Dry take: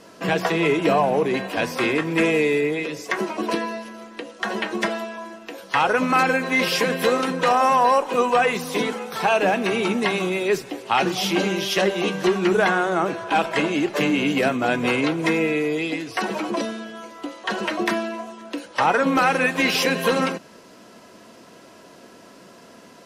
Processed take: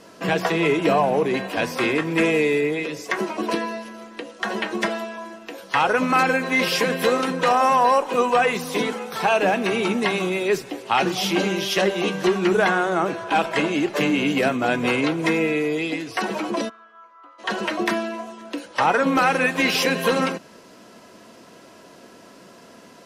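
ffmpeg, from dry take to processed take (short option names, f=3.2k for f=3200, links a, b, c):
-filter_complex "[0:a]asplit=3[a][b][c];[a]afade=t=out:st=16.68:d=0.02[d];[b]bandpass=f=1.2k:t=q:w=5.6,afade=t=in:st=16.68:d=0.02,afade=t=out:st=17.38:d=0.02[e];[c]afade=t=in:st=17.38:d=0.02[f];[d][e][f]amix=inputs=3:normalize=0"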